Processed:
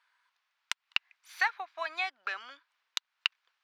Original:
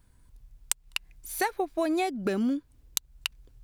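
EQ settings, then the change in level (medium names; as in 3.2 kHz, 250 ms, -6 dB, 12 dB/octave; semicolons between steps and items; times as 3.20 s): high-pass 1.1 kHz 24 dB/octave; distance through air 240 m; +7.0 dB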